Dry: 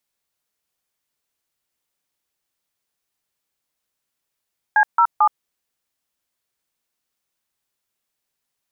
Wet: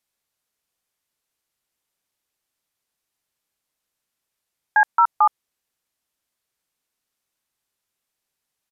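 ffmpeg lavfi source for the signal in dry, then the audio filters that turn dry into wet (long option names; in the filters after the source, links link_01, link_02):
-f lavfi -i "aevalsrc='0.211*clip(min(mod(t,0.222),0.072-mod(t,0.222))/0.002,0,1)*(eq(floor(t/0.222),0)*(sin(2*PI*852*mod(t,0.222))+sin(2*PI*1633*mod(t,0.222)))+eq(floor(t/0.222),1)*(sin(2*PI*941*mod(t,0.222))+sin(2*PI*1336*mod(t,0.222)))+eq(floor(t/0.222),2)*(sin(2*PI*852*mod(t,0.222))+sin(2*PI*1209*mod(t,0.222))))':duration=0.666:sample_rate=44100"
-af "aresample=32000,aresample=44100"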